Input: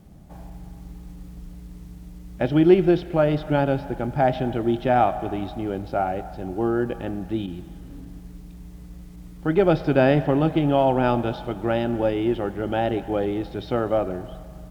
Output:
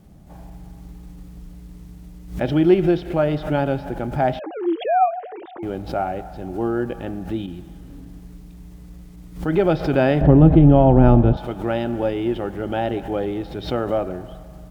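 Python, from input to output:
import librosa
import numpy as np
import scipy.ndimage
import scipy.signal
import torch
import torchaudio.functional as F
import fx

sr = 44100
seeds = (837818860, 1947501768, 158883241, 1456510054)

y = fx.sine_speech(x, sr, at=(4.39, 5.63))
y = fx.tilt_eq(y, sr, slope=-4.5, at=(10.21, 11.37))
y = fx.pre_swell(y, sr, db_per_s=130.0)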